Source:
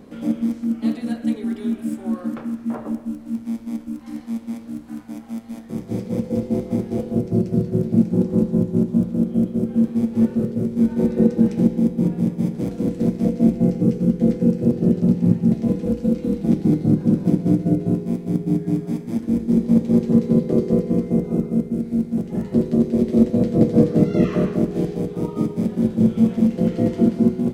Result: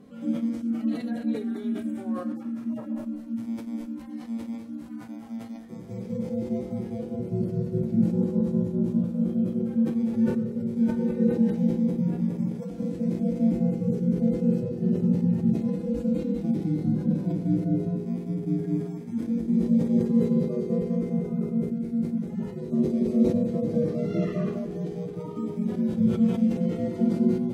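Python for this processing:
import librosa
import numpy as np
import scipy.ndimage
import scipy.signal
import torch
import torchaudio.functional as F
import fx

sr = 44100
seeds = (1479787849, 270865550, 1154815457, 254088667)

y = fx.hpss_only(x, sr, part='harmonic')
y = fx.sustainer(y, sr, db_per_s=83.0)
y = F.gain(torch.from_numpy(y), -6.0).numpy()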